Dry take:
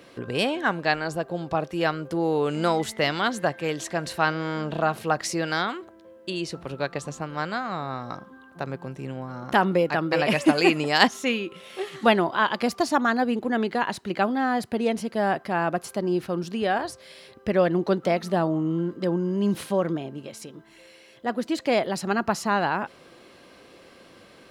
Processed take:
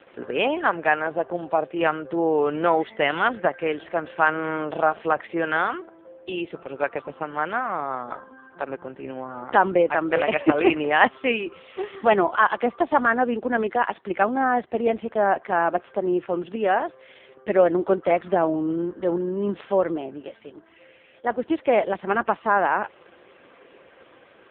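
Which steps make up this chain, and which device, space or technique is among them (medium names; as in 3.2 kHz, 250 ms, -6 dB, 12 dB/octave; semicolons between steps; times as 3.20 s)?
telephone (band-pass 330–3200 Hz; saturation -6.5 dBFS, distortion -25 dB; trim +5 dB; AMR-NB 4.75 kbps 8 kHz)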